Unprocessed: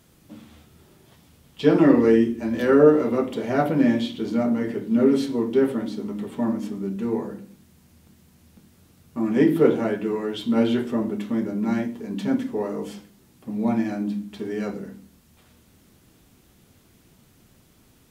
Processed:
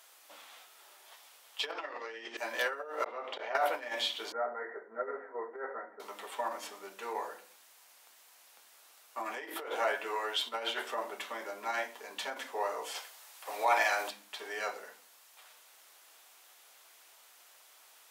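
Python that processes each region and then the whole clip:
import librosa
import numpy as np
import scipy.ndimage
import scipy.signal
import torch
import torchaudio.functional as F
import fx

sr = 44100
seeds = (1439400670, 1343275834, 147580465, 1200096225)

y = fx.chain(x, sr, fx.lowpass(hz=5400.0, slope=24),
    fx.high_shelf(hz=2500.0, db=8.0),
    fx.env_flatten(amount_pct=50), at=(1.72, 2.37))
y = fx.chain(y, sr, fx.gate_flip(shuts_db=-22.0, range_db=-35),
    fx.air_absorb(metres=200.0),
    fx.env_flatten(amount_pct=100), at=(3.04, 3.55))
y = fx.chain(y, sr, fx.cheby_ripple(hz=2000.0, ripple_db=6),
    fx.notch_comb(f0_hz=290.0), at=(4.32, 6.0))
y = fx.spec_clip(y, sr, under_db=17, at=(12.94, 14.09), fade=0.02)
y = fx.highpass(y, sr, hz=190.0, slope=6, at=(12.94, 14.09), fade=0.02)
y = fx.over_compress(y, sr, threshold_db=-23.0, ratio=-1.0)
y = scipy.signal.sosfilt(scipy.signal.butter(4, 680.0, 'highpass', fs=sr, output='sos'), y)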